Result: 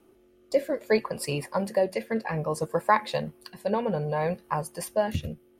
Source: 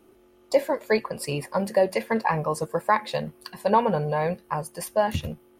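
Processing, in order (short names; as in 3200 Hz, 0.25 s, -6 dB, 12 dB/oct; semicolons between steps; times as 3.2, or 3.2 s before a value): rotary speaker horn 0.6 Hz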